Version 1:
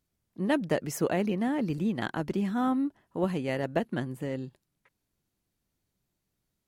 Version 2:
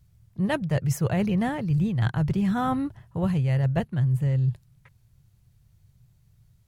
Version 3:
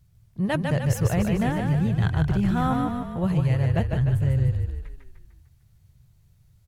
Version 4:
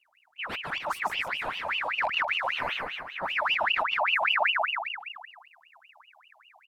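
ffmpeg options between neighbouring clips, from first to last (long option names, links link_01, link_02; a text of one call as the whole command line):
ffmpeg -i in.wav -af "lowshelf=frequency=180:width_type=q:width=3:gain=13.5,areverse,acompressor=threshold=-30dB:ratio=6,areverse,volume=8.5dB" out.wav
ffmpeg -i in.wav -filter_complex "[0:a]asplit=8[link_01][link_02][link_03][link_04][link_05][link_06][link_07][link_08];[link_02]adelay=150,afreqshift=-30,volume=-4dB[link_09];[link_03]adelay=300,afreqshift=-60,volume=-9.4dB[link_10];[link_04]adelay=450,afreqshift=-90,volume=-14.7dB[link_11];[link_05]adelay=600,afreqshift=-120,volume=-20.1dB[link_12];[link_06]adelay=750,afreqshift=-150,volume=-25.4dB[link_13];[link_07]adelay=900,afreqshift=-180,volume=-30.8dB[link_14];[link_08]adelay=1050,afreqshift=-210,volume=-36.1dB[link_15];[link_01][link_09][link_10][link_11][link_12][link_13][link_14][link_15]amix=inputs=8:normalize=0" out.wav
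ffmpeg -i in.wav -af "asubboost=boost=4:cutoff=140,aeval=exprs='val(0)*sin(2*PI*1800*n/s+1800*0.6/5.1*sin(2*PI*5.1*n/s))':channel_layout=same,volume=-8dB" out.wav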